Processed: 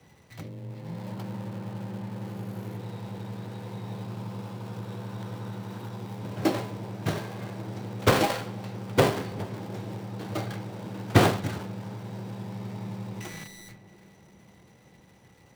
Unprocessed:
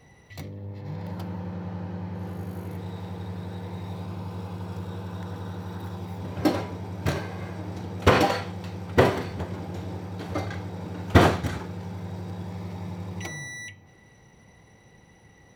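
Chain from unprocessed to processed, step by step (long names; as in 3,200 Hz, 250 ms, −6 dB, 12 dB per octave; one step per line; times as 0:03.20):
gap after every zero crossing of 0.21 ms
on a send: tape delay 338 ms, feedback 85%, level −12 dB, low-pass 1,100 Hz
on the sum: frequency shifter +16 Hz
level −2 dB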